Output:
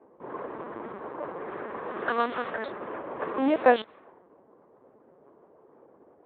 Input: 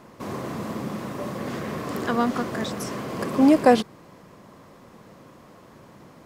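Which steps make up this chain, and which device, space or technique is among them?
level-controlled noise filter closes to 510 Hz, open at -16.5 dBFS; 1.83–2.58 s: treble shelf 3.2 kHz +6 dB; talking toy (LPC vocoder at 8 kHz pitch kept; high-pass 390 Hz 12 dB/octave; peaking EQ 1.6 kHz +4 dB 0.24 oct)

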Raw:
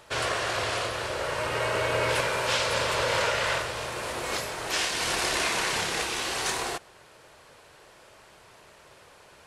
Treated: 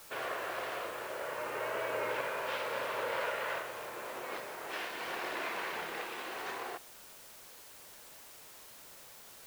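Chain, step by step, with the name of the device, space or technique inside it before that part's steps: wax cylinder (band-pass 260–2300 Hz; wow and flutter; white noise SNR 14 dB); trim -8 dB

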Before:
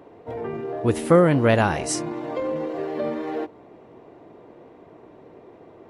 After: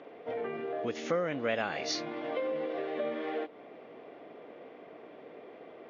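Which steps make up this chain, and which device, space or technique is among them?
hearing aid with frequency lowering (knee-point frequency compression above 2.8 kHz 1.5:1; compression 2.5:1, threshold -32 dBFS, peak gain reduction 14 dB; cabinet simulation 300–5600 Hz, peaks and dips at 350 Hz -7 dB, 940 Hz -9 dB, 2.2 kHz +4 dB, 3.4 kHz +5 dB); trim +1.5 dB

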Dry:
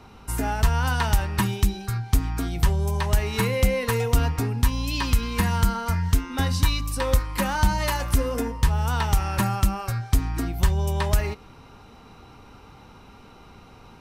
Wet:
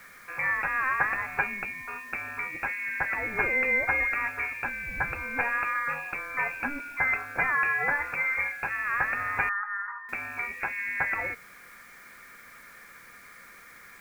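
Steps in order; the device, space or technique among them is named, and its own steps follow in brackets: scrambled radio voice (band-pass 360–3100 Hz; frequency inversion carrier 2.6 kHz; white noise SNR 27 dB); 9.49–10.09 s: Chebyshev band-pass 820–1900 Hz, order 5; trim +1.5 dB

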